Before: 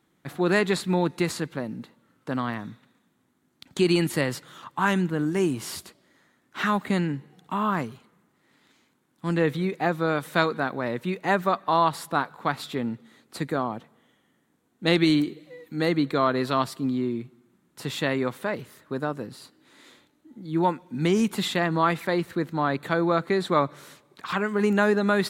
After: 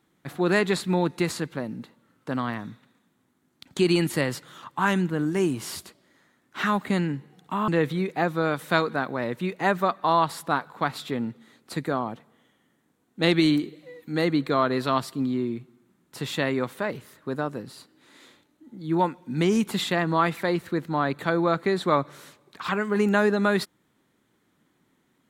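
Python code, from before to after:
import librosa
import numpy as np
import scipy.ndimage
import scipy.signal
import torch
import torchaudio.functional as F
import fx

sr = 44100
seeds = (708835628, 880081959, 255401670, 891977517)

y = fx.edit(x, sr, fx.cut(start_s=7.68, length_s=1.64), tone=tone)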